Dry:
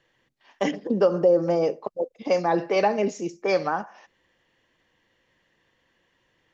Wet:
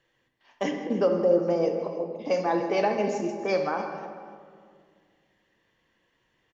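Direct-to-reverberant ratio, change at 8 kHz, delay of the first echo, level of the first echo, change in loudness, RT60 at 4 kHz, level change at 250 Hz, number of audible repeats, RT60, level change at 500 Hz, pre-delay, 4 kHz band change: 4.0 dB, n/a, 0.16 s, -15.0 dB, -2.5 dB, 1.0 s, -1.5 dB, 2, 2.1 s, -2.5 dB, 9 ms, -3.0 dB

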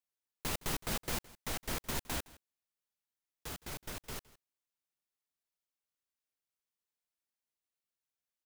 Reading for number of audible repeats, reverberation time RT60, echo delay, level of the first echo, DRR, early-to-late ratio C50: 1, none, 0.164 s, -21.0 dB, none, none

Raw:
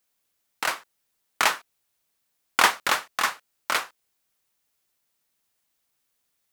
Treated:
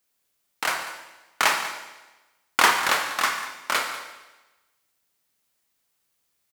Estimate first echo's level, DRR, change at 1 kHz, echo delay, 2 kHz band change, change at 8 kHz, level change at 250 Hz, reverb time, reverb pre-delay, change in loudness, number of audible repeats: -15.0 dB, 2.5 dB, +2.0 dB, 0.194 s, +2.0 dB, +2.0 dB, +2.0 dB, 1.1 s, 28 ms, +1.0 dB, 1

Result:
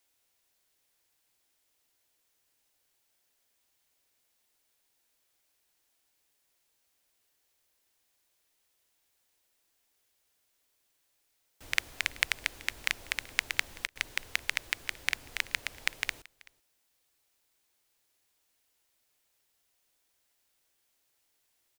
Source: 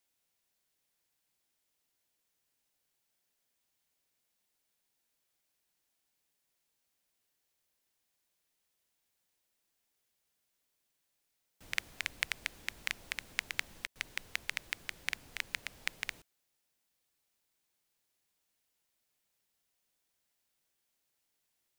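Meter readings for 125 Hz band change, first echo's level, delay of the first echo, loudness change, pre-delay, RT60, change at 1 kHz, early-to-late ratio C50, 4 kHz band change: +4.0 dB, -24.0 dB, 0.381 s, +6.0 dB, none, none, +6.0 dB, none, +6.0 dB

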